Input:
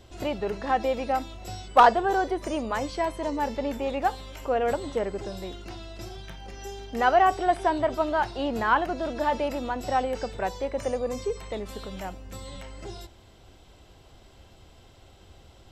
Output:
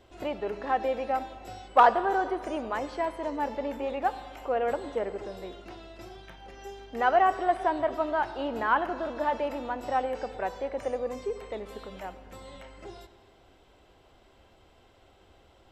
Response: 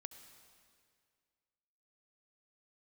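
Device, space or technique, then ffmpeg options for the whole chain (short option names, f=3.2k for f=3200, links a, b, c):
filtered reverb send: -filter_complex "[0:a]asplit=2[a][b];[b]highpass=230,lowpass=3.3k[c];[1:a]atrim=start_sample=2205[d];[c][d]afir=irnorm=-1:irlink=0,volume=7dB[e];[a][e]amix=inputs=2:normalize=0,volume=-9dB"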